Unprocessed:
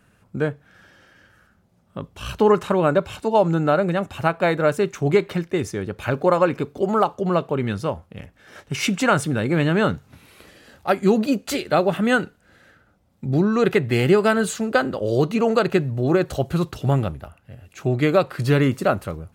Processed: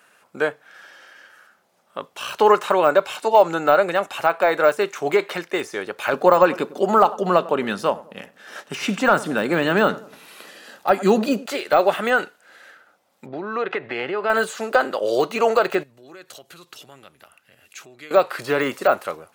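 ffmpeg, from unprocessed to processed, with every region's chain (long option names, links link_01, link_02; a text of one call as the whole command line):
ffmpeg -i in.wav -filter_complex "[0:a]asettb=1/sr,asplit=3[link_01][link_02][link_03];[link_01]atrim=end=6.134[link_04];[link_02]atrim=start=6.13:end=11.46,asetpts=PTS-STARTPTS,afade=type=in:duration=0.004:curve=qsin,afade=type=out:start_time=5.326:duration=0.004:curve=qsin,equalizer=frequency=200:width_type=o:width=0.98:gain=10.5,bandreject=frequency=2200:width=12,asplit=2[link_05][link_06];[link_06]adelay=99,lowpass=frequency=850:poles=1,volume=-18dB,asplit=2[link_07][link_08];[link_08]adelay=99,lowpass=frequency=850:poles=1,volume=0.47,asplit=2[link_09][link_10];[link_10]adelay=99,lowpass=frequency=850:poles=1,volume=0.47,asplit=2[link_11][link_12];[link_12]adelay=99,lowpass=frequency=850:poles=1,volume=0.47[link_13];[link_05][link_07][link_09][link_11][link_13]amix=inputs=5:normalize=0,atrim=end_sample=235053[link_14];[link_03]atrim=start=11.456[link_15];[link_04][link_14]acrossfade=duration=0.004:curve1=hsin:curve2=qsin[link_16];[link_16][link_15]acrossfade=duration=0.004:curve1=qsin:curve2=hsin,asettb=1/sr,asplit=3[link_17][link_18][link_19];[link_17]atrim=end=13.264[link_20];[link_18]atrim=start=13.26:end=14.3,asetpts=PTS-STARTPTS,afade=type=in:duration=0.004:curve=qsin,afade=type=out:start_time=1.036:duration=0.004:curve=qsin,lowpass=3300,aemphasis=mode=reproduction:type=50fm,acompressor=threshold=-22dB:ratio=5:attack=3.2:release=140:knee=1:detection=peak[link_21];[link_19]atrim=start=14.296[link_22];[link_20][link_21]acrossfade=duration=0.004:curve1=hsin:curve2=qsin[link_23];[link_23][link_22]acrossfade=duration=0.004:curve1=qsin:curve2=hsin,asettb=1/sr,asplit=3[link_24][link_25][link_26];[link_24]atrim=end=15.834[link_27];[link_25]atrim=start=15.83:end=18.11,asetpts=PTS-STARTPTS,afade=type=in:duration=0.004:curve=qsin,afade=type=out:start_time=2.276:duration=0.004:curve=qsin,acompressor=threshold=-39dB:ratio=3:attack=3.2:release=140:knee=1:detection=peak,equalizer=frequency=720:width_type=o:width=2:gain=-10.5[link_28];[link_26]atrim=start=18.106[link_29];[link_27][link_28]acrossfade=duration=0.004:curve1=hsin:curve2=qsin[link_30];[link_30][link_29]acrossfade=duration=0.004:curve1=qsin:curve2=hsin,highpass=610,deesser=1,volume=7.5dB" out.wav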